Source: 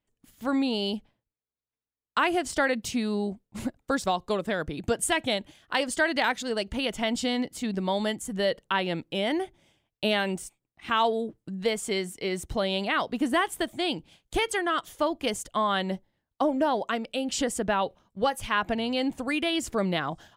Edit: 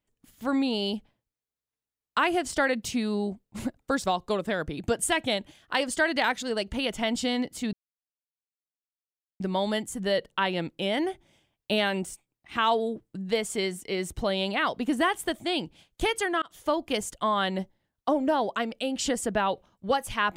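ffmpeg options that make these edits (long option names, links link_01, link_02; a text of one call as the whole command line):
ffmpeg -i in.wav -filter_complex "[0:a]asplit=3[link_01][link_02][link_03];[link_01]atrim=end=7.73,asetpts=PTS-STARTPTS,afade=type=out:start_time=7.726:duration=0.004:curve=hsin,apad=pad_dur=1.67[link_04];[link_02]atrim=start=7.73:end=14.75,asetpts=PTS-STARTPTS,afade=type=in:duration=0.004:curve=hsin,afade=type=out:start_time=7.016:duration=0.004:curve=hsin[link_05];[link_03]atrim=start=14.75,asetpts=PTS-STARTPTS,afade=type=in:duration=0.25[link_06];[link_04][link_05][link_06]concat=n=3:v=0:a=1" out.wav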